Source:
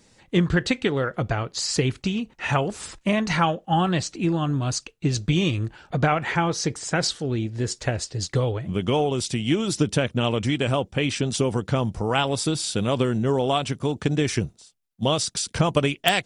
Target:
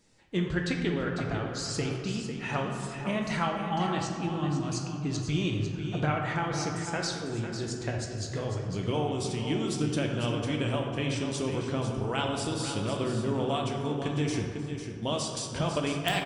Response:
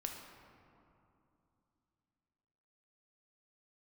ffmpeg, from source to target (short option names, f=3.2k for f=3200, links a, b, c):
-filter_complex "[0:a]aecho=1:1:499:0.355[a];[1:a]atrim=start_sample=2205,asetrate=52920,aresample=44100[b];[a][b]afir=irnorm=-1:irlink=0,volume=-5dB"